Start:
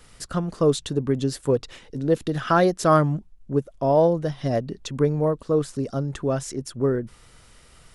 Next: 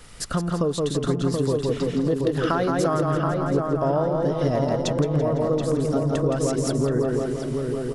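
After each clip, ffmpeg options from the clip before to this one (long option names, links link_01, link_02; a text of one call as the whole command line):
ffmpeg -i in.wav -filter_complex "[0:a]asplit=2[link_01][link_02];[link_02]aecho=0:1:168|336|504|672|840:0.631|0.259|0.106|0.0435|0.0178[link_03];[link_01][link_03]amix=inputs=2:normalize=0,acompressor=threshold=-25dB:ratio=10,asplit=2[link_04][link_05];[link_05]adelay=728,lowpass=frequency=1800:poles=1,volume=-3.5dB,asplit=2[link_06][link_07];[link_07]adelay=728,lowpass=frequency=1800:poles=1,volume=0.48,asplit=2[link_08][link_09];[link_09]adelay=728,lowpass=frequency=1800:poles=1,volume=0.48,asplit=2[link_10][link_11];[link_11]adelay=728,lowpass=frequency=1800:poles=1,volume=0.48,asplit=2[link_12][link_13];[link_13]adelay=728,lowpass=frequency=1800:poles=1,volume=0.48,asplit=2[link_14][link_15];[link_15]adelay=728,lowpass=frequency=1800:poles=1,volume=0.48[link_16];[link_06][link_08][link_10][link_12][link_14][link_16]amix=inputs=6:normalize=0[link_17];[link_04][link_17]amix=inputs=2:normalize=0,volume=5dB" out.wav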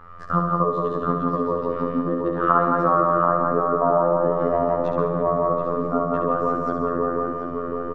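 ffmpeg -i in.wav -af "afftfilt=real='hypot(re,im)*cos(PI*b)':imag='0':win_size=2048:overlap=0.75,lowpass=frequency=1200:width_type=q:width=5.7,aecho=1:1:68|136|204|272|340|408|476:0.501|0.281|0.157|0.088|0.0493|0.0276|0.0155,volume=1.5dB" out.wav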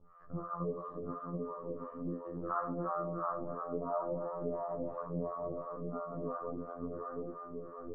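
ffmpeg -i in.wav -filter_complex "[0:a]lowpass=1100,flanger=delay=16.5:depth=6.4:speed=0.67,acrossover=split=590[link_01][link_02];[link_01]aeval=exprs='val(0)*(1-1/2+1/2*cos(2*PI*2.9*n/s))':channel_layout=same[link_03];[link_02]aeval=exprs='val(0)*(1-1/2-1/2*cos(2*PI*2.9*n/s))':channel_layout=same[link_04];[link_03][link_04]amix=inputs=2:normalize=0,volume=-8.5dB" out.wav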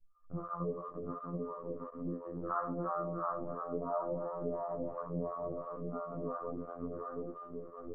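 ffmpeg -i in.wav -af "anlmdn=0.0251" out.wav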